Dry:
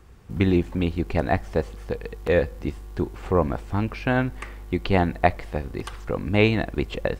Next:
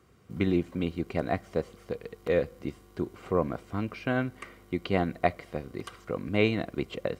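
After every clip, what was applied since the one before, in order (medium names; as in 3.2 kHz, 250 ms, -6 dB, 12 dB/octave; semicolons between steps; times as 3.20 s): high-pass 92 Hz 12 dB/octave; comb of notches 870 Hz; trim -5 dB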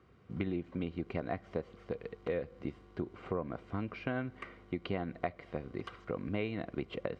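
low-pass 3.3 kHz 12 dB/octave; compression 5:1, threshold -30 dBFS, peak gain reduction 11 dB; trim -2 dB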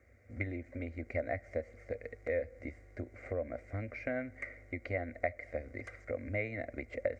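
FFT filter 100 Hz 0 dB, 170 Hz -28 dB, 240 Hz -5 dB, 400 Hz -13 dB, 580 Hz +5 dB, 1 kHz -22 dB, 2.1 kHz +7 dB, 3 kHz -23 dB, 6.8 kHz +3 dB, 10 kHz 0 dB; trim +3.5 dB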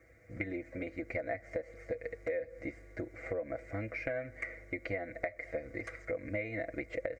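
comb 6.1 ms, depth 83%; compression 6:1, threshold -35 dBFS, peak gain reduction 9 dB; trim +2.5 dB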